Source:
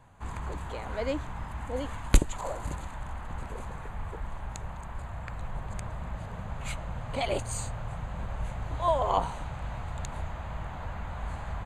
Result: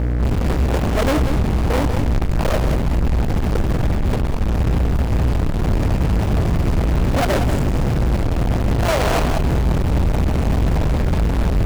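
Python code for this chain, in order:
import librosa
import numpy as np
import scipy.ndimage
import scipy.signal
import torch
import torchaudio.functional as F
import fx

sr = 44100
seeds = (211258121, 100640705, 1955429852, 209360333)

p1 = scipy.signal.medfilt(x, 41)
p2 = fx.low_shelf(p1, sr, hz=420.0, db=4.0)
p3 = fx.comb_fb(p2, sr, f0_hz=630.0, decay_s=0.29, harmonics='all', damping=0.0, mix_pct=40)
p4 = fx.sample_hold(p3, sr, seeds[0], rate_hz=2400.0, jitter_pct=0)
p5 = p3 + (p4 * 10.0 ** (-9.0 / 20.0))
p6 = fx.add_hum(p5, sr, base_hz=60, snr_db=12)
p7 = fx.fuzz(p6, sr, gain_db=47.0, gate_db=-54.0)
p8 = p7 + 10.0 ** (-8.0 / 20.0) * np.pad(p7, (int(188 * sr / 1000.0), 0))[:len(p7)]
y = p8 * 10.0 ** (-2.5 / 20.0)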